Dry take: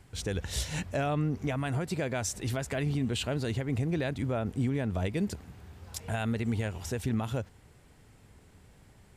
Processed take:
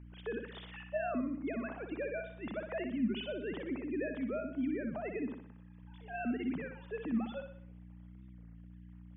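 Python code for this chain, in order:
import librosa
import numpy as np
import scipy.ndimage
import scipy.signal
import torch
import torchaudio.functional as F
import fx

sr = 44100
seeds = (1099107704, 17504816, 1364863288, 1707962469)

y = fx.sine_speech(x, sr)
y = fx.add_hum(y, sr, base_hz=60, snr_db=11)
y = fx.notch_comb(y, sr, f0_hz=740.0, at=(5.1, 5.83))
y = fx.echo_feedback(y, sr, ms=61, feedback_pct=46, wet_db=-7.0)
y = fx.record_warp(y, sr, rpm=33.33, depth_cents=100.0)
y = y * librosa.db_to_amplitude(-7.5)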